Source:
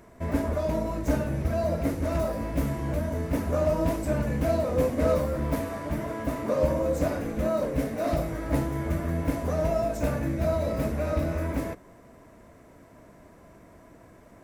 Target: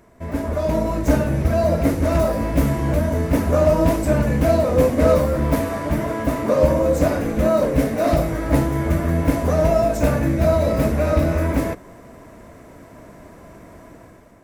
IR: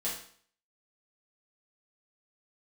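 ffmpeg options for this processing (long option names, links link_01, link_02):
-af "dynaudnorm=framelen=160:gausssize=7:maxgain=9.5dB"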